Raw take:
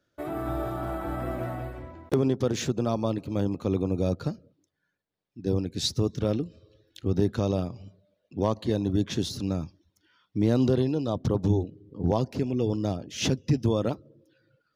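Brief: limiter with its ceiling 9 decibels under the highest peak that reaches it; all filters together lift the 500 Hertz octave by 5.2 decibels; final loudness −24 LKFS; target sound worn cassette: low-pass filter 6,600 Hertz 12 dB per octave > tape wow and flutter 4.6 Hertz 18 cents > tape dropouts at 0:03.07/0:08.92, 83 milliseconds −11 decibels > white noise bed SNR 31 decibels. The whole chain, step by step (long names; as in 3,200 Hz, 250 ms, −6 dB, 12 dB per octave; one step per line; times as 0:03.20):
parametric band 500 Hz +6.5 dB
brickwall limiter −18 dBFS
low-pass filter 6,600 Hz 12 dB per octave
tape wow and flutter 4.6 Hz 18 cents
tape dropouts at 0:03.07/0:08.92, 83 ms −11 dB
white noise bed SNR 31 dB
level +6 dB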